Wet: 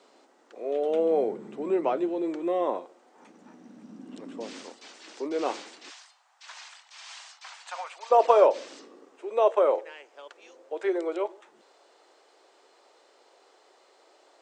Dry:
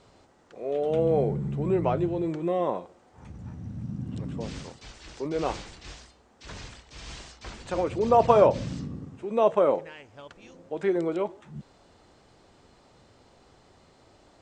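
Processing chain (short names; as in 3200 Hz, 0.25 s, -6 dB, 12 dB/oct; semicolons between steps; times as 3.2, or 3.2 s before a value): steep high-pass 250 Hz 36 dB/oct, from 5.89 s 760 Hz, from 8.1 s 360 Hz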